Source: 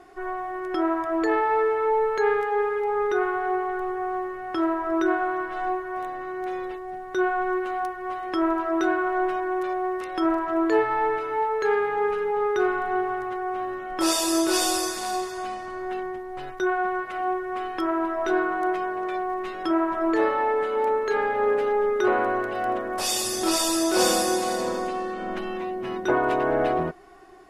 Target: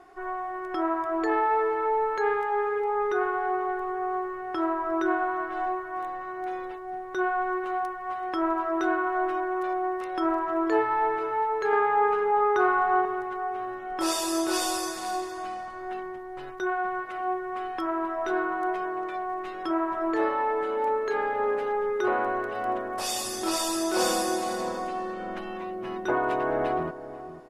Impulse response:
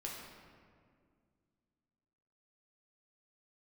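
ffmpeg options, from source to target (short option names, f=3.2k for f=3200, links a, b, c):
-filter_complex "[0:a]asetnsamples=n=441:p=0,asendcmd='11.73 equalizer g 12.5;13.05 equalizer g 3.5',equalizer=f=1k:w=0.92:g=5.5,asplit=2[a][b];[b]adelay=492,lowpass=f=910:p=1,volume=-12dB,asplit=2[c][d];[d]adelay=492,lowpass=f=910:p=1,volume=0.36,asplit=2[e][f];[f]adelay=492,lowpass=f=910:p=1,volume=0.36,asplit=2[g][h];[h]adelay=492,lowpass=f=910:p=1,volume=0.36[i];[a][c][e][g][i]amix=inputs=5:normalize=0,volume=-5.5dB"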